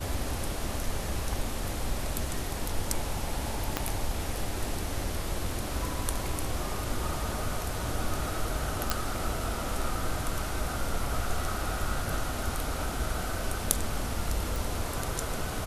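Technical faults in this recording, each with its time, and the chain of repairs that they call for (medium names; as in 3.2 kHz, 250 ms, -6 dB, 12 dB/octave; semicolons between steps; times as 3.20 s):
3.77 s: pop -10 dBFS
8.90 s: pop
14.56 s: pop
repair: de-click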